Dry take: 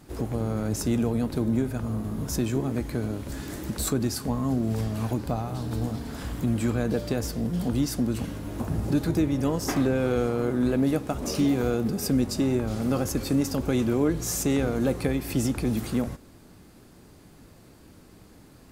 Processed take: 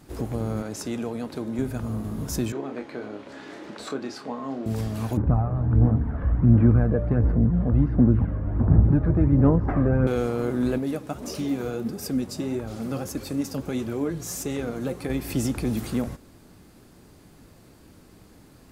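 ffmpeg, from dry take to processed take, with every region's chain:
-filter_complex "[0:a]asettb=1/sr,asplit=3[a][b][c];[a]atrim=end=0.624[d];[b]atrim=start=0.62:end=1.59,asetpts=PTS-STARTPTS,afade=t=in:d=0.004:c=qsin,afade=t=out:st=0.966:d=0.004:c=qsin,highpass=f=390:p=1,highshelf=f=11k:g=-12[e];[c]atrim=start=1.586[f];[d][e]acrossfade=d=0.004:c1=hsin:c2=qsin[g];[g][f]acrossfade=d=0.004:c1=qsin:c2=hsin,asettb=1/sr,asplit=3[h][i][j];[h]atrim=end=2.524[k];[i]atrim=start=2.52:end=4.66,asetpts=PTS-STARTPTS,afade=t=in:d=0.004:c=qsin,afade=t=out:st=2.136:d=0.004:c=qsin,highpass=380,lowpass=3.4k,asplit=2[l][m];[m]adelay=29,volume=-7.5dB[n];[l][n]amix=inputs=2:normalize=0,atrim=end_sample=94374[o];[j]atrim=start=4.656[p];[k][o]acrossfade=d=0.004:c1=hsin:c2=qsin[q];[q][p]acrossfade=d=0.004:c1=qsin:c2=hsin,asettb=1/sr,asplit=3[r][s][t];[r]atrim=end=5.174[u];[s]atrim=start=5.17:end=10.07,asetpts=PTS-STARTPTS,afade=t=in:d=0.004:c=qsin,afade=t=out:st=4.896:d=0.004:c=qsin,lowpass=f=1.7k:w=0.5412,lowpass=f=1.7k:w=1.3066,equalizer=f=67:w=0.45:g=10,aphaser=in_gain=1:out_gain=1:delay=1.8:decay=0.4:speed=1.4:type=sinusoidal[v];[t]atrim=start=10.066[w];[u][v]acrossfade=d=0.004:c1=hsin:c2=qsin[x];[x][w]acrossfade=d=0.004:c1=qsin:c2=hsin,asettb=1/sr,asplit=3[y][z][aa];[y]atrim=end=10.784[ab];[z]atrim=start=10.78:end=15.1,asetpts=PTS-STARTPTS,afade=t=in:d=0.004:c=qsin,afade=t=out:st=4.316:d=0.004:c=qsin,highpass=67,flanger=delay=1.1:depth=6.2:regen=50:speed=1.6:shape=triangular[ac];[aa]atrim=start=15.096[ad];[ab][ac]acrossfade=d=0.004:c1=hsin:c2=qsin[ae];[ae][ad]acrossfade=d=0.004:c1=qsin:c2=hsin"

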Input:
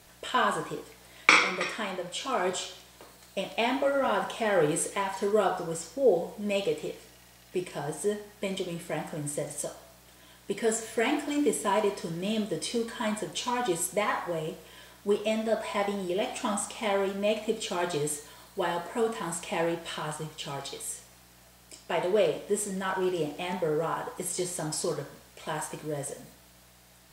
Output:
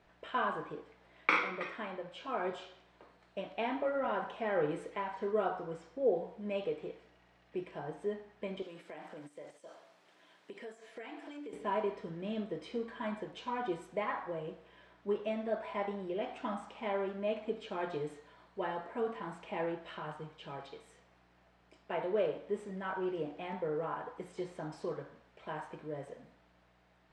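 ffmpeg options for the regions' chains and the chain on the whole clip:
-filter_complex "[0:a]asettb=1/sr,asplit=3[a][b][c];[a]atrim=end=8.624[d];[b]atrim=start=8.62:end=11.53,asetpts=PTS-STARTPTS,afade=t=in:d=0.004:c=qsin,afade=t=out:st=2.906:d=0.004:c=qsin,highpass=260,highshelf=f=3.7k:g=11.5,acompressor=threshold=-35dB:ratio=6:attack=3.2:release=140:knee=1:detection=peak[e];[c]atrim=start=11.526[f];[d][e]acrossfade=d=0.004:c1=hsin:c2=qsin[g];[g][f]acrossfade=d=0.004:c1=qsin:c2=hsin,lowpass=2.2k,equalizer=f=95:w=1.5:g=-7,volume=-7dB"

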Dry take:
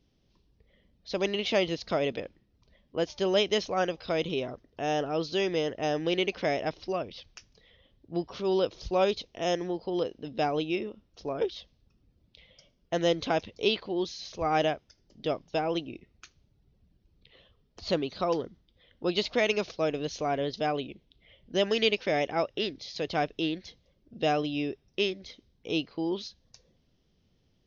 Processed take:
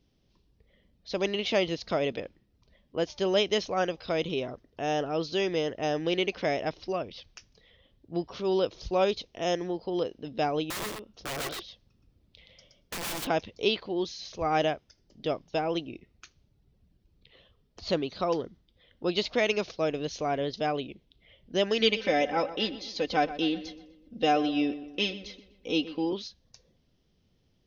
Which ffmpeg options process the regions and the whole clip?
-filter_complex "[0:a]asettb=1/sr,asplit=3[a][b][c];[a]atrim=end=10.704[d];[b]atrim=start=10.7:end=13.27,asetpts=PTS-STARTPTS,afade=t=in:d=0.004:c=qsin,afade=t=out:st=2.566:d=0.004:c=qsin,aeval=exprs='(mod(31.6*val(0)+1,2)-1)/31.6':c=same,aecho=1:1:121:0.631,atrim=end_sample=113337[e];[c]atrim=start=13.266[f];[d][e]acrossfade=d=0.004:c1=hsin:c2=qsin[g];[g][f]acrossfade=d=0.004:c1=qsin:c2=hsin,asettb=1/sr,asplit=3[h][i][j];[h]atrim=end=21.804[k];[i]atrim=start=21.8:end=26.13,asetpts=PTS-STARTPTS,afade=t=in:d=0.004:c=qsin,afade=t=out:st=4.326:d=0.004:c=qsin,aecho=1:1:3.9:0.74,atrim=end_sample=190953,asplit=2[l][m];[m]adelay=124,lowpass=f=3k:p=1,volume=-14dB,asplit=2[n][o];[o]adelay=124,lowpass=f=3k:p=1,volume=0.5,asplit=2[p][q];[q]adelay=124,lowpass=f=3k:p=1,volume=0.5,asplit=2[r][s];[s]adelay=124,lowpass=f=3k:p=1,volume=0.5,asplit=2[t][u];[u]adelay=124,lowpass=f=3k:p=1,volume=0.5[v];[l][n][p][r][t][v]amix=inputs=6:normalize=0,atrim=end_sample=190953[w];[j]atrim=start=26.126[x];[k][w]acrossfade=d=0.004:c1=hsin:c2=qsin[y];[y][x]acrossfade=d=0.004:c1=qsin:c2=hsin"

